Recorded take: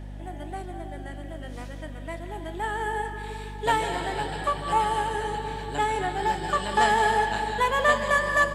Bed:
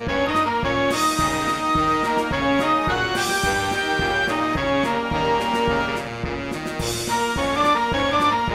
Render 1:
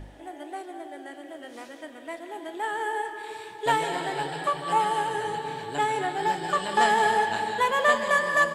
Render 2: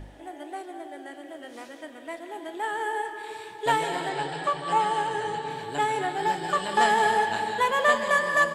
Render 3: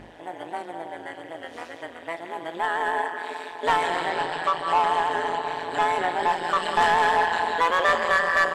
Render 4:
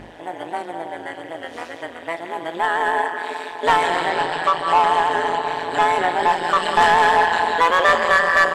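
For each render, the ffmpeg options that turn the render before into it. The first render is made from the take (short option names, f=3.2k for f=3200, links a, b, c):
-af "bandreject=f=50:t=h:w=4,bandreject=f=100:t=h:w=4,bandreject=f=150:t=h:w=4,bandreject=f=200:t=h:w=4,bandreject=f=250:t=h:w=4"
-filter_complex "[0:a]asettb=1/sr,asplit=3[a][b][c];[a]atrim=end=4.094[d];[b]atrim=start=4.09:end=5.5,asetpts=PTS-STARTPTS,afade=t=in:d=0.004:c=qsin,afade=t=out:st=1.406:d=0.004:c=qsin,lowpass=f=8.8k:w=0.5412,lowpass=f=8.8k:w=1.3066[e];[c]atrim=start=5.496[f];[d][e]acrossfade=d=0.004:c1=hsin:c2=qsin[g];[g][f]acrossfade=d=0.004:c1=qsin:c2=hsin"
-filter_complex "[0:a]tremolo=f=170:d=0.919,asplit=2[a][b];[b]highpass=f=720:p=1,volume=17dB,asoftclip=type=tanh:threshold=-9.5dB[c];[a][c]amix=inputs=2:normalize=0,lowpass=f=2.6k:p=1,volume=-6dB"
-af "volume=5.5dB"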